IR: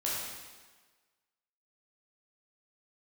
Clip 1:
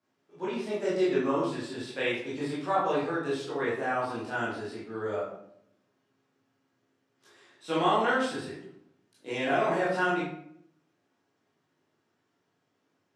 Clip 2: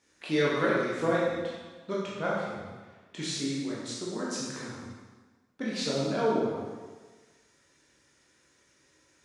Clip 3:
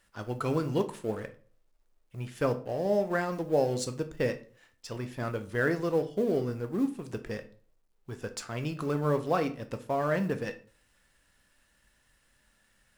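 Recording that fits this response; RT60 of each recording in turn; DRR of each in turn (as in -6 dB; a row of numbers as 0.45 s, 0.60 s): 2; 0.65 s, 1.4 s, 0.45 s; -9.0 dB, -7.0 dB, 7.5 dB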